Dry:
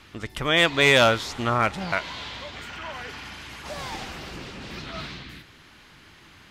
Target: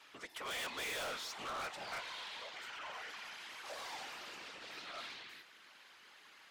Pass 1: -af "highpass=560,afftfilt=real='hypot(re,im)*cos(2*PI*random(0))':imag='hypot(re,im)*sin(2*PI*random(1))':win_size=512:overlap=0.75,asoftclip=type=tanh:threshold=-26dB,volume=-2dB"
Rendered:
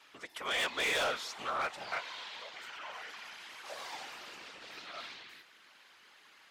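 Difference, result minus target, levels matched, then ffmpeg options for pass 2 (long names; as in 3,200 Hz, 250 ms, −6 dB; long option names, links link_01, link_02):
soft clipping: distortion −8 dB
-af "highpass=560,afftfilt=real='hypot(re,im)*cos(2*PI*random(0))':imag='hypot(re,im)*sin(2*PI*random(1))':win_size=512:overlap=0.75,asoftclip=type=tanh:threshold=-37.5dB,volume=-2dB"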